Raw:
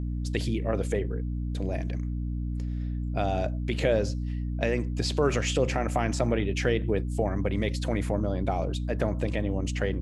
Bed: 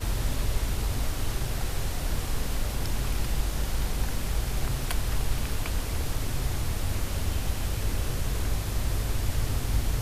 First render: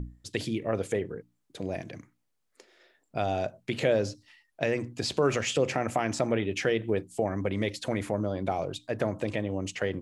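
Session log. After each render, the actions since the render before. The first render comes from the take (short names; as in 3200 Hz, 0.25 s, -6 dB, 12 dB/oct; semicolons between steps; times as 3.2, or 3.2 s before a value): notches 60/120/180/240/300 Hz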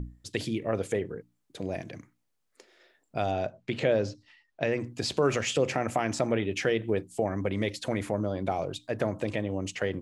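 3.31–4.82 air absorption 79 m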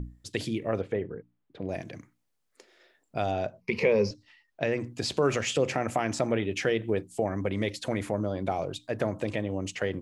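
0.81–1.69 air absorption 350 m; 3.61–4.11 ripple EQ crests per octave 0.84, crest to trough 16 dB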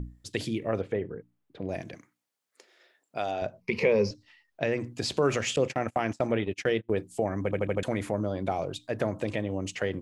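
1.94–3.42 HPF 450 Hz 6 dB/oct; 5.56–6.9 gate -32 dBFS, range -30 dB; 7.43 stutter in place 0.08 s, 5 plays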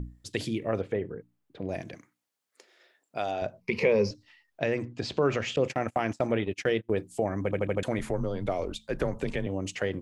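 4.84–5.64 air absorption 130 m; 7.99–9.47 frequency shift -82 Hz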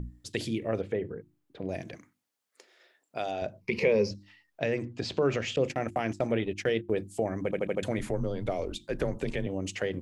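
notches 50/100/150/200/250/300/350 Hz; dynamic EQ 1100 Hz, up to -5 dB, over -43 dBFS, Q 1.2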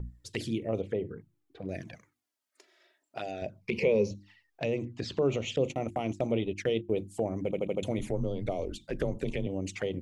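envelope flanger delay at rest 3.3 ms, full sweep at -27.5 dBFS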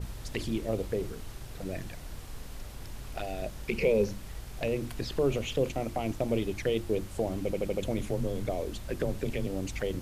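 add bed -13.5 dB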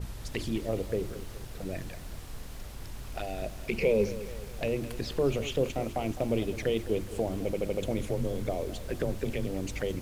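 lo-fi delay 0.209 s, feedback 55%, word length 8-bit, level -14 dB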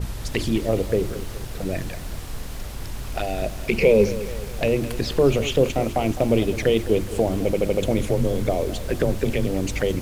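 gain +9.5 dB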